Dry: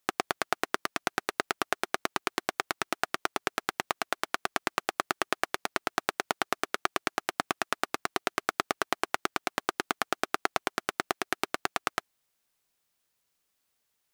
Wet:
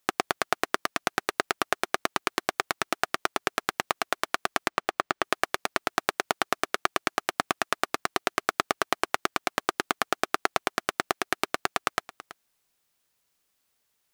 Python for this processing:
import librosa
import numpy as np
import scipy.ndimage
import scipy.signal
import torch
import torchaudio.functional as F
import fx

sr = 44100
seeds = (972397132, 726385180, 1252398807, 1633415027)

y = fx.peak_eq(x, sr, hz=15000.0, db=-12.0, octaves=1.6, at=(4.68, 5.24))
y = y + 10.0 ** (-17.0 / 20.0) * np.pad(y, (int(329 * sr / 1000.0), 0))[:len(y)]
y = F.gain(torch.from_numpy(y), 3.0).numpy()